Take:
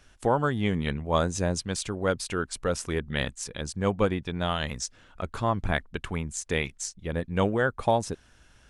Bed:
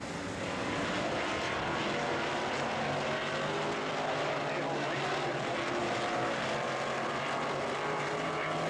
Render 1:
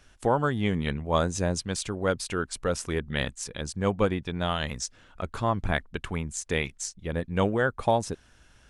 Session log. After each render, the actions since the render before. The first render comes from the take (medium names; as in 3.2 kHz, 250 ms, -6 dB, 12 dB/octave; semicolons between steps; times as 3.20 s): no audible change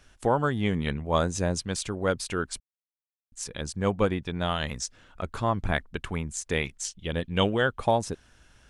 2.60–3.32 s: mute; 6.84–7.79 s: peaking EQ 3.1 kHz +13.5 dB 0.51 oct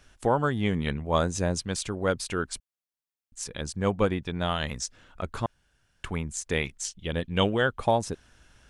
5.46–6.04 s: room tone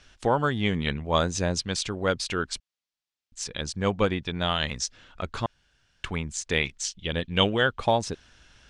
low-pass 6.9 kHz 12 dB/octave; peaking EQ 4 kHz +7 dB 2.1 oct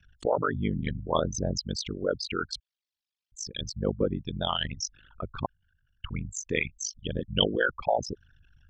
resonances exaggerated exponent 3; ring modulator 25 Hz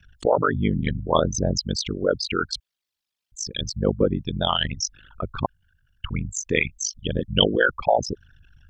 trim +6.5 dB; peak limiter -3 dBFS, peak gain reduction 1 dB